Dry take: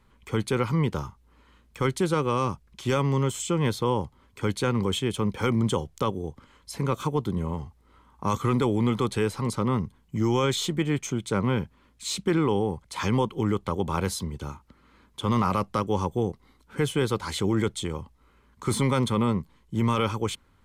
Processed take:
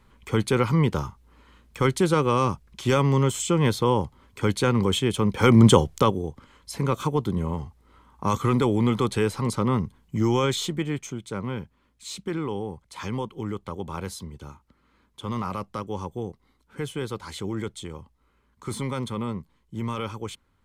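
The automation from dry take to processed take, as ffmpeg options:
ffmpeg -i in.wav -af "volume=11dB,afade=type=in:start_time=5.32:duration=0.35:silence=0.421697,afade=type=out:start_time=5.67:duration=0.6:silence=0.354813,afade=type=out:start_time=10.25:duration=0.96:silence=0.398107" out.wav

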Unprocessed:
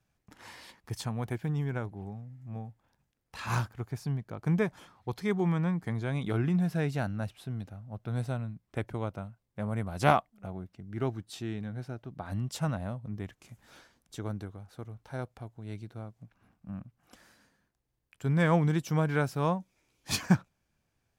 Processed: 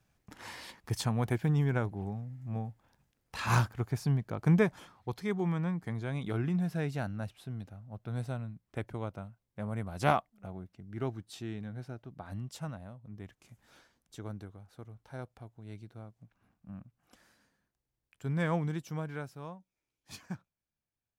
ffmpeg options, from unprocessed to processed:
ffmpeg -i in.wav -af "volume=10dB,afade=type=out:start_time=4.42:duration=0.83:silence=0.446684,afade=type=out:start_time=11.93:duration=1.01:silence=0.375837,afade=type=in:start_time=12.94:duration=0.45:silence=0.473151,afade=type=out:start_time=18.42:duration=1.1:silence=0.266073" out.wav

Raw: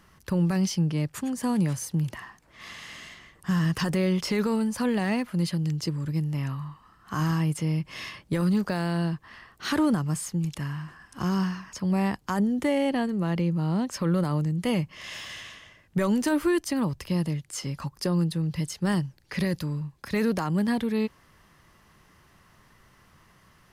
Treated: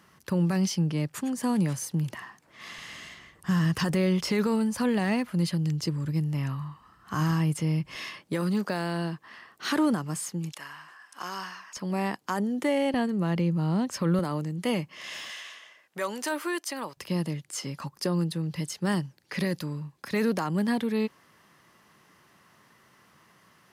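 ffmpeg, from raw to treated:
ffmpeg -i in.wav -af "asetnsamples=nb_out_samples=441:pad=0,asendcmd='2.78 highpass f 53;7.95 highpass f 210;10.52 highpass f 700;11.77 highpass f 250;12.94 highpass f 81;14.19 highpass f 210;15.3 highpass f 560;16.97 highpass f 170',highpass=130" out.wav

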